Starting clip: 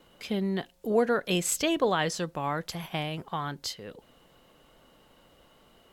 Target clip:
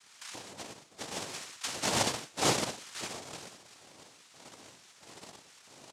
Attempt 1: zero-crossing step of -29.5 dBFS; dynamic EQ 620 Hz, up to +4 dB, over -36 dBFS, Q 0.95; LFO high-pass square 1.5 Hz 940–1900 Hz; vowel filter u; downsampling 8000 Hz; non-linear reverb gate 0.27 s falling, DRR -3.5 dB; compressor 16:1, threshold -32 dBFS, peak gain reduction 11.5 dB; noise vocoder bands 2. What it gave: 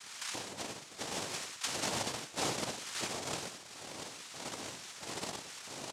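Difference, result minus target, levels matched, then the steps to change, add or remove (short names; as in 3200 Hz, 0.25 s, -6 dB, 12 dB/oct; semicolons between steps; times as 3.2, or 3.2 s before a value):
compressor: peak gain reduction +11.5 dB; zero-crossing step: distortion +9 dB
change: zero-crossing step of -40 dBFS; remove: compressor 16:1, threshold -32 dBFS, peak gain reduction 11.5 dB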